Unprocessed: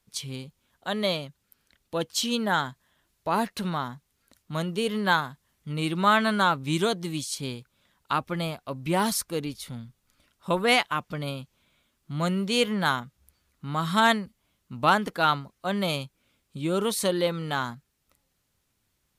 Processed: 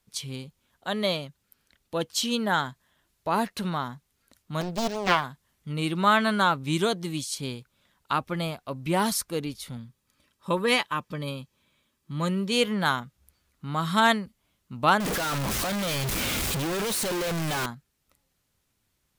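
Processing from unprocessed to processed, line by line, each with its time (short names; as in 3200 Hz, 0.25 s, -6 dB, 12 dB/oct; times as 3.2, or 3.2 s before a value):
4.61–5.24 Doppler distortion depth 0.99 ms
9.77–12.52 notch comb 710 Hz
15–17.66 infinite clipping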